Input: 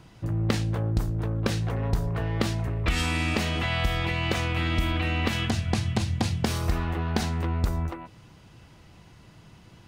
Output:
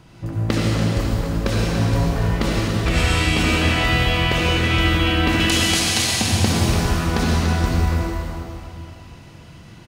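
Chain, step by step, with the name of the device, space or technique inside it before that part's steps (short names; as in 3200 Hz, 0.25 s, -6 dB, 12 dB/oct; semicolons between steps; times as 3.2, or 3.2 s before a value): 5.4–6.21 tilt +4.5 dB/oct; cave (echo 0.289 s -9 dB; reverb RT60 2.6 s, pre-delay 61 ms, DRR -5 dB); gain +2.5 dB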